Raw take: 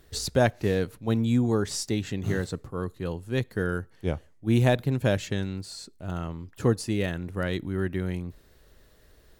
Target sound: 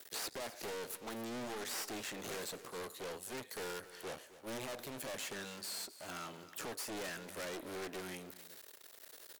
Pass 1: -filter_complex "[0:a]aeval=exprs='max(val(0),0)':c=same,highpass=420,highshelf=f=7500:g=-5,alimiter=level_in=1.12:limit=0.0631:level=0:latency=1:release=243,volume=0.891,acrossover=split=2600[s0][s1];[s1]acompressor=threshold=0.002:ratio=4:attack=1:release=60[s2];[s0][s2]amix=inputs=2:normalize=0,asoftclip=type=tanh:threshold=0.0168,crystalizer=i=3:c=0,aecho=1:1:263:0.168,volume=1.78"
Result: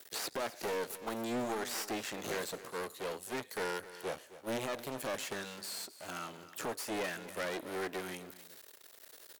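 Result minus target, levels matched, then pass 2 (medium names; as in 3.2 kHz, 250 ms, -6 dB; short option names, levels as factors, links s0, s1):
saturation: distortion -7 dB
-filter_complex "[0:a]aeval=exprs='max(val(0),0)':c=same,highpass=420,highshelf=f=7500:g=-5,alimiter=level_in=1.12:limit=0.0631:level=0:latency=1:release=243,volume=0.891,acrossover=split=2600[s0][s1];[s1]acompressor=threshold=0.002:ratio=4:attack=1:release=60[s2];[s0][s2]amix=inputs=2:normalize=0,asoftclip=type=tanh:threshold=0.00501,crystalizer=i=3:c=0,aecho=1:1:263:0.168,volume=1.78"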